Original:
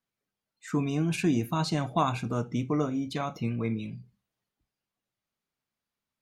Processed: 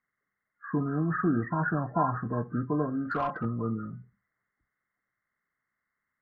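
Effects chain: knee-point frequency compression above 1 kHz 4:1; 3.05–3.45 s: overdrive pedal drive 17 dB, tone 1.3 kHz, clips at -18 dBFS; trim -1 dB

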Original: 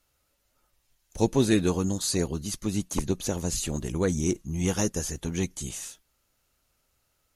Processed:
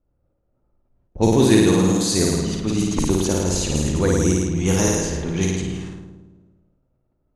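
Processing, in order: flutter echo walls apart 9.3 m, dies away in 1.4 s; level-controlled noise filter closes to 460 Hz, open at -19.5 dBFS; decay stretcher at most 37 dB/s; trim +4.5 dB

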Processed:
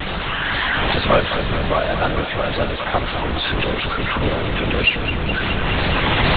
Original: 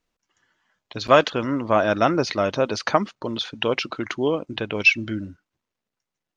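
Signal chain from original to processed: one-bit delta coder 64 kbps, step -16.5 dBFS; recorder AGC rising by 6.4 dB/s; LPC vocoder at 8 kHz whisper; wow and flutter 89 cents; on a send: thinning echo 210 ms, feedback 84%, high-pass 320 Hz, level -10 dB; on the sum: trim -1 dB

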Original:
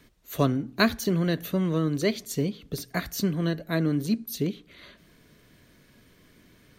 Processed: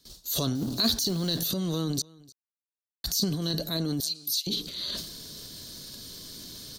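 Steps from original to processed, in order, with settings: 0.55–1.48 s: companding laws mixed up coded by mu; gate with hold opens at -48 dBFS; resonant high shelf 3.1 kHz +12 dB, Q 3; compression 3:1, threshold -38 dBFS, peak gain reduction 22.5 dB; transient shaper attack -4 dB, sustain +11 dB; 2.02–3.04 s: mute; 4.00–4.47 s: steep high-pass 2.3 kHz; delay 304 ms -23.5 dB; trim +7.5 dB

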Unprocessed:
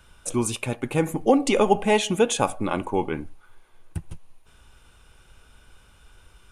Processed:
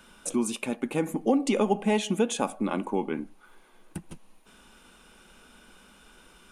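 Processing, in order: resonant low shelf 150 Hz -11 dB, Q 3; compression 1.5:1, threshold -41 dBFS, peak gain reduction 11 dB; trim +2.5 dB

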